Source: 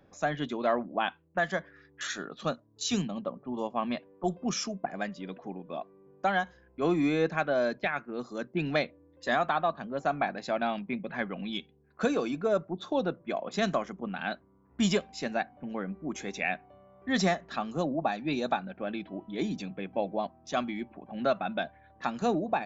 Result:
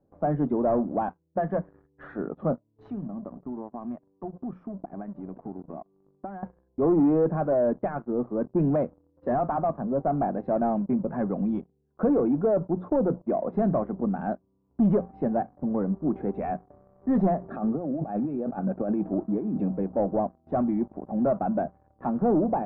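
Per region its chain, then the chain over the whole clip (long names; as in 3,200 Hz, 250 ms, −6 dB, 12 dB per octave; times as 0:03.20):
0:02.90–0:06.43: parametric band 510 Hz −11.5 dB 0.38 octaves + downward compressor 4 to 1, threshold −43 dBFS
0:17.43–0:19.71: high-pass filter 52 Hz + compressor whose output falls as the input rises −37 dBFS + notch comb filter 1,000 Hz
whole clip: mains-hum notches 60/120/180 Hz; leveller curve on the samples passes 3; Bessel low-pass filter 650 Hz, order 4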